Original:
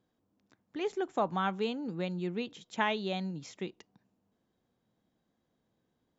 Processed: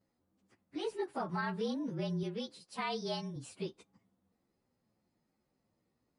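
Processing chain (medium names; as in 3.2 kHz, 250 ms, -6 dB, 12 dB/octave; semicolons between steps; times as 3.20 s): frequency axis rescaled in octaves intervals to 110%; 2.23–3.36 s: bass shelf 280 Hz -8 dB; peak limiter -28.5 dBFS, peak gain reduction 8 dB; trim +1.5 dB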